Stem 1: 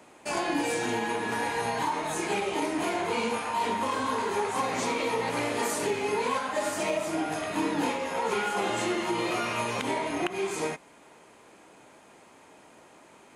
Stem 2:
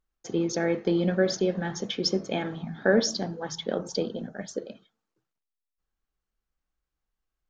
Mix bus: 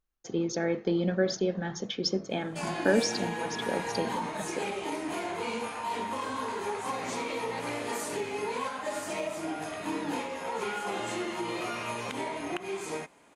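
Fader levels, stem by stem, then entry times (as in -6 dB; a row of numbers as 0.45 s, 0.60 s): -5.0 dB, -3.0 dB; 2.30 s, 0.00 s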